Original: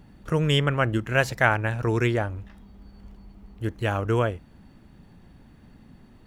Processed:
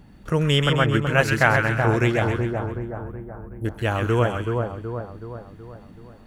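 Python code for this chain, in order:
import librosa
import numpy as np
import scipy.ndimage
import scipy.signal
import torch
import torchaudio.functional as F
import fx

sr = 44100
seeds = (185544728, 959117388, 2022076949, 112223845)

y = fx.cheby2_bandstop(x, sr, low_hz=1400.0, high_hz=6100.0, order=4, stop_db=40, at=(2.34, 3.65))
y = fx.echo_split(y, sr, split_hz=1300.0, low_ms=375, high_ms=131, feedback_pct=52, wet_db=-4)
y = F.gain(torch.from_numpy(y), 2.0).numpy()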